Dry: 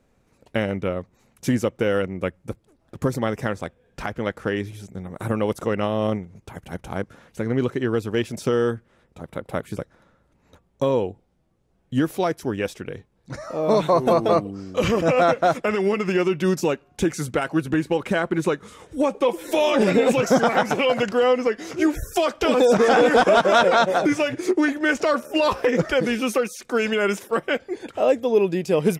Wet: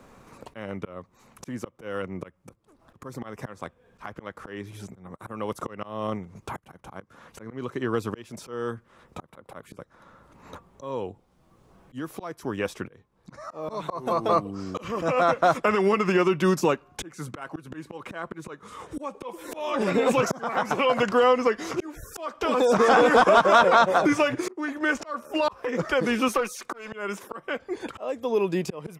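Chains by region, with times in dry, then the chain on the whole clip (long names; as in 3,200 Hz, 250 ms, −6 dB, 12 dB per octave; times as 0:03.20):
0:26.28–0:26.92: low-shelf EQ 220 Hz −10.5 dB + tube saturation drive 19 dB, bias 0.25
whole clip: parametric band 1,100 Hz +9.5 dB 0.59 octaves; volume swells 788 ms; multiband upward and downward compressor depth 40%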